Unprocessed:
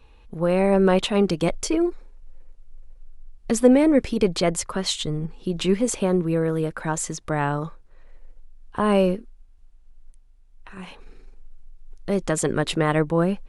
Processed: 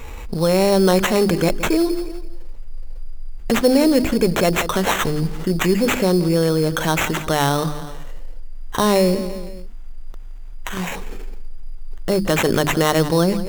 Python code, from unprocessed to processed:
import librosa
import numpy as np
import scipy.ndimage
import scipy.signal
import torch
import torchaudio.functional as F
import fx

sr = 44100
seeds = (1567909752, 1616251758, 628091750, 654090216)

p1 = fx.hum_notches(x, sr, base_hz=50, count=7)
p2 = p1 + fx.echo_feedback(p1, sr, ms=170, feedback_pct=33, wet_db=-19, dry=0)
p3 = fx.sample_hold(p2, sr, seeds[0], rate_hz=4800.0, jitter_pct=0)
p4 = fx.wow_flutter(p3, sr, seeds[1], rate_hz=2.1, depth_cents=22.0)
y = fx.env_flatten(p4, sr, amount_pct=50)